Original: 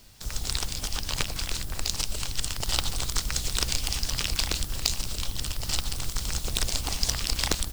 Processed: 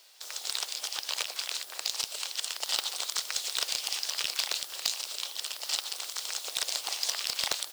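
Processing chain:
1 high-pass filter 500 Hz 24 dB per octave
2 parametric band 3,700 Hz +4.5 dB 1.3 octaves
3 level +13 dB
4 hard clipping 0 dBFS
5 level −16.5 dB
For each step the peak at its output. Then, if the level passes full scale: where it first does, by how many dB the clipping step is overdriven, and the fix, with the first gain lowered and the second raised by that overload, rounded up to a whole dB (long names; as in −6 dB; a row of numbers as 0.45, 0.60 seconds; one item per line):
−6.0, −3.5, +9.5, 0.0, −16.5 dBFS
step 3, 9.5 dB
step 3 +3 dB, step 5 −6.5 dB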